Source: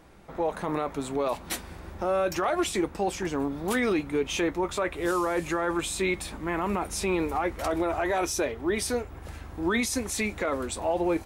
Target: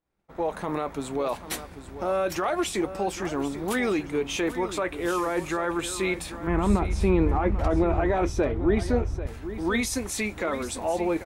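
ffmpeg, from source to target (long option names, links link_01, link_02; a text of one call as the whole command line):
ffmpeg -i in.wav -filter_complex "[0:a]agate=range=-33dB:threshold=-37dB:ratio=3:detection=peak,asettb=1/sr,asplit=3[link_01][link_02][link_03];[link_01]atrim=end=6.474[link_04];[link_02]atrim=start=6.47:end=9.27,asetpts=PTS-STARTPTS,afade=type=in:duration=0.004:curve=qsin,afade=type=out:start_time=2.796:duration=0.004:curve=qsin,aemphasis=mode=reproduction:type=riaa[link_05];[link_03]atrim=start=9.266[link_06];[link_04][link_05]acrossfade=duration=0.004:curve1=hsin:curve2=qsin[link_07];[link_07][link_06]acrossfade=duration=0.004:curve1=qsin:curve2=hsin,aecho=1:1:791:0.237" out.wav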